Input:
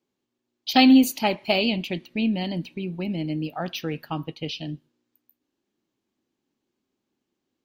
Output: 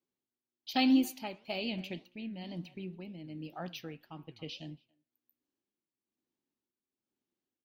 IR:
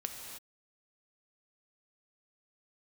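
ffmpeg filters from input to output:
-filter_complex "[0:a]asplit=2[s0][s1];[s1]adelay=280,highpass=300,lowpass=3400,asoftclip=type=hard:threshold=0.224,volume=0.0794[s2];[s0][s2]amix=inputs=2:normalize=0,flanger=delay=5.5:depth=5.3:regen=89:speed=1.9:shape=sinusoidal,asplit=2[s3][s4];[1:a]atrim=start_sample=2205,atrim=end_sample=6174[s5];[s4][s5]afir=irnorm=-1:irlink=0,volume=0.119[s6];[s3][s6]amix=inputs=2:normalize=0,tremolo=f=1.1:d=0.58,volume=0.422"

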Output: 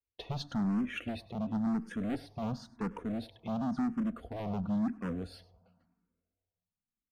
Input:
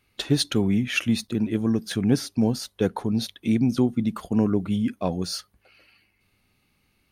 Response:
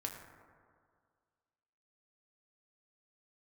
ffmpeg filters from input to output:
-filter_complex "[0:a]lowpass=f=1000:p=1,agate=range=0.0562:threshold=0.001:ratio=16:detection=peak,lowshelf=f=160:g=5.5,aecho=1:1:4.2:0.35,asoftclip=type=hard:threshold=0.0708,aecho=1:1:100:0.0841,asplit=2[s0][s1];[1:a]atrim=start_sample=2205[s2];[s1][s2]afir=irnorm=-1:irlink=0,volume=0.15[s3];[s0][s3]amix=inputs=2:normalize=0,asplit=2[s4][s5];[s5]afreqshift=0.95[s6];[s4][s6]amix=inputs=2:normalize=1,volume=0.531"

